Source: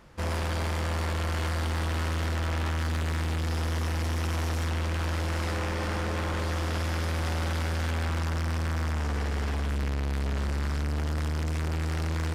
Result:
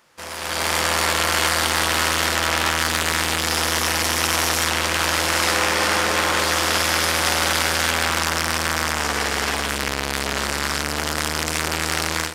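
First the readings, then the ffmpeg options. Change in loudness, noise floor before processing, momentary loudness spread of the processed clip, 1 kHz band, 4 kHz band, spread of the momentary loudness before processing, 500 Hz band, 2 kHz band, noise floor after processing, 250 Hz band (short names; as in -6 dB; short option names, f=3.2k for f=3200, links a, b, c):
+10.5 dB, -29 dBFS, 5 LU, +13.5 dB, +18.0 dB, 1 LU, +9.5 dB, +15.5 dB, -27 dBFS, +5.0 dB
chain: -af "dynaudnorm=f=370:g=3:m=15.5dB,highpass=f=820:p=1,highshelf=f=4.5k:g=7.5"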